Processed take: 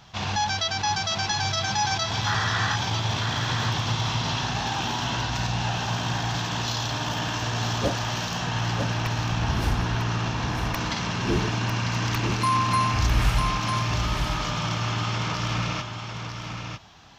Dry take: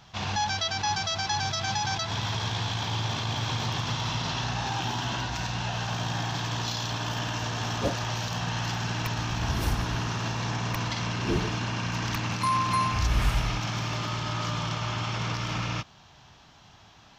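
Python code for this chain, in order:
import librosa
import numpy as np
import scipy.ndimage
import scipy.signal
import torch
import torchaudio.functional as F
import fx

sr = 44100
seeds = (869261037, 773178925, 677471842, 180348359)

y = fx.spec_paint(x, sr, seeds[0], shape='noise', start_s=2.26, length_s=0.5, low_hz=1000.0, high_hz=2000.0, level_db=-31.0)
y = fx.high_shelf(y, sr, hz=6700.0, db=-9.5, at=(8.47, 10.74))
y = y + 10.0 ** (-6.5 / 20.0) * np.pad(y, (int(949 * sr / 1000.0), 0))[:len(y)]
y = F.gain(torch.from_numpy(y), 2.5).numpy()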